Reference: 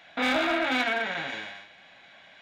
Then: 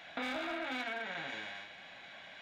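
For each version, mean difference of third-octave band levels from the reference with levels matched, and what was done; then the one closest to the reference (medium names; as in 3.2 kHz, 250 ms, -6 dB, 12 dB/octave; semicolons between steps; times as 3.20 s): 6.0 dB: compression 3:1, threshold -42 dBFS, peak gain reduction 14.5 dB; trim +1 dB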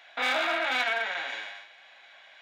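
4.5 dB: high-pass 620 Hz 12 dB/octave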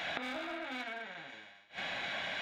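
10.0 dB: inverted gate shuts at -39 dBFS, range -29 dB; trim +14 dB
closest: second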